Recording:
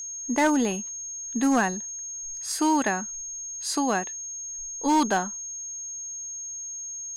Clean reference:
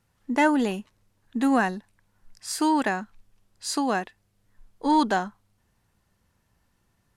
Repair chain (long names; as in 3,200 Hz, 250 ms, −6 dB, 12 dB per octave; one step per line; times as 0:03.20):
clipped peaks rebuilt −15.5 dBFS
click removal
notch filter 6,500 Hz, Q 30